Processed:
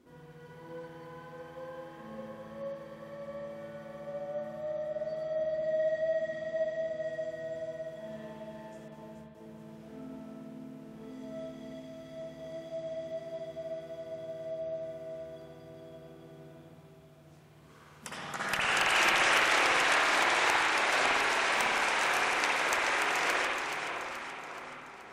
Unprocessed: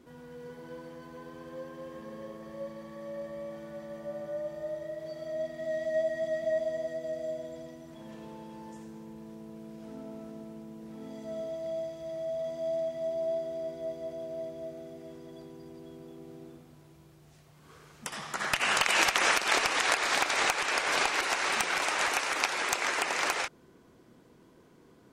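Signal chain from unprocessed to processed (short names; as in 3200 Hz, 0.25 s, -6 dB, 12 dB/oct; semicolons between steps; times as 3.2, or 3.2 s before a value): 5.26–7.01 high shelf 9900 Hz -10 dB; split-band echo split 1600 Hz, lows 0.612 s, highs 0.427 s, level -6.5 dB; 8.88–9.35 gate with hold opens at -36 dBFS; low shelf 66 Hz -3 dB; spring tank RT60 1.2 s, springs 54 ms, chirp 50 ms, DRR -4 dB; gain -5.5 dB; WMA 128 kbps 44100 Hz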